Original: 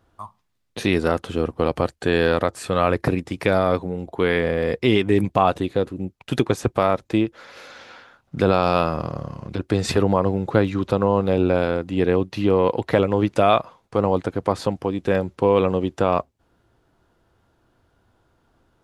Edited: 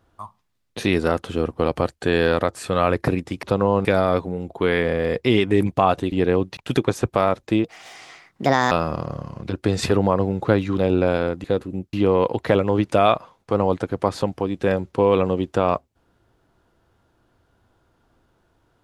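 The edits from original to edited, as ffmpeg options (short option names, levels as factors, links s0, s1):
-filter_complex "[0:a]asplit=10[s0][s1][s2][s3][s4][s5][s6][s7][s8][s9];[s0]atrim=end=3.432[s10];[s1]atrim=start=10.838:end=11.262[s11];[s2]atrim=start=3.428:end=5.702[s12];[s3]atrim=start=11.918:end=12.372[s13];[s4]atrim=start=6.188:end=7.264[s14];[s5]atrim=start=7.26:end=8.77,asetpts=PTS-STARTPTS,asetrate=62181,aresample=44100[s15];[s6]atrim=start=8.766:end=10.842[s16];[s7]atrim=start=11.258:end=11.922[s17];[s8]atrim=start=5.698:end=6.192[s18];[s9]atrim=start=12.368[s19];[s10][s11]acrossfade=d=0.004:c1=hsin:c2=hsin[s20];[s20][s12]acrossfade=d=0.004:c1=hsin:c2=hsin[s21];[s21][s13]acrossfade=d=0.004:c1=hsin:c2=hsin[s22];[s22][s14]acrossfade=d=0.004:c1=hsin:c2=hsin[s23];[s23][s15]acrossfade=d=0.004:c1=hsin:c2=hsin[s24];[s24][s16]acrossfade=d=0.004:c1=hsin:c2=hsin[s25];[s25][s17]acrossfade=d=0.004:c1=hsin:c2=hsin[s26];[s26][s18]acrossfade=d=0.004:c1=hsin:c2=hsin[s27];[s27][s19]acrossfade=d=0.004:c1=hsin:c2=hsin"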